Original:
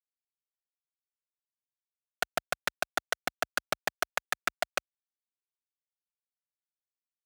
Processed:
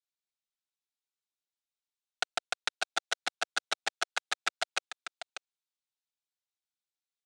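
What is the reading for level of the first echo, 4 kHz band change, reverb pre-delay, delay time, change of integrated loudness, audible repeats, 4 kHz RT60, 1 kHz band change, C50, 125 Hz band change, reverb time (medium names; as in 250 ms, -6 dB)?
-11.0 dB, +3.5 dB, no reverb, 591 ms, -1.0 dB, 1, no reverb, -2.0 dB, no reverb, under -15 dB, no reverb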